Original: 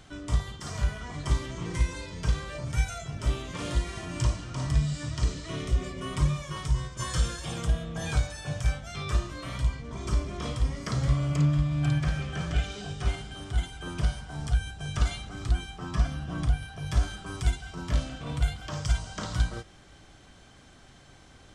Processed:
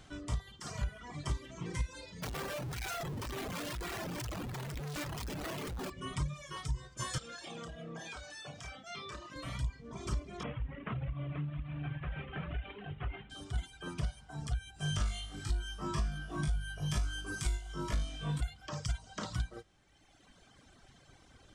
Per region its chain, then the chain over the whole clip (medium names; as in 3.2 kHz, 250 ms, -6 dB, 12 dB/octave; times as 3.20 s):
2.22–5.90 s: high-pass 120 Hz 6 dB/octave + Schmitt trigger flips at -43.5 dBFS
7.18–9.36 s: three-band isolator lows -17 dB, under 180 Hz, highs -13 dB, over 7.2 kHz + compression 10:1, threshold -36 dBFS + doubling 30 ms -5 dB
10.43–13.30 s: CVSD coder 16 kbps + compression 4:1, threshold -28 dBFS
14.74–18.41 s: treble shelf 7 kHz +8 dB + flutter echo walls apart 3.4 m, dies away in 0.77 s
whole clip: reverb removal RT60 1.6 s; compression 6:1, threshold -27 dBFS; trim -3.5 dB